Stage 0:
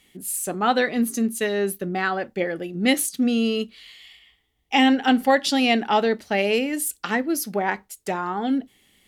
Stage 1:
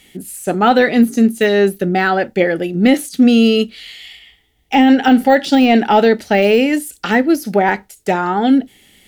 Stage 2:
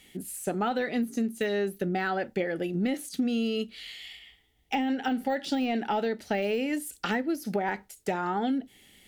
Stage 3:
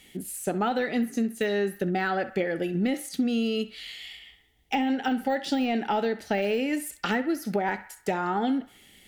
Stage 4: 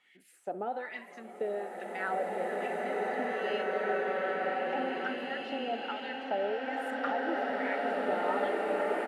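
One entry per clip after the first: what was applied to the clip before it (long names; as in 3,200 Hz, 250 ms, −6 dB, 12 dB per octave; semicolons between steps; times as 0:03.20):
de-essing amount 90%; notch filter 1,100 Hz, Q 5.1; boost into a limiter +12 dB; level −1 dB
downward compressor 5 to 1, threshold −18 dBFS, peak gain reduction 11 dB; level −8 dB
feedback echo with a band-pass in the loop 65 ms, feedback 58%, band-pass 1,500 Hz, level −13 dB; level +2 dB
auto-filter band-pass sine 1.2 Hz 530–2,200 Hz; echo with shifted repeats 168 ms, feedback 59%, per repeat +130 Hz, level −20 dB; slow-attack reverb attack 2,380 ms, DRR −6 dB; level −2.5 dB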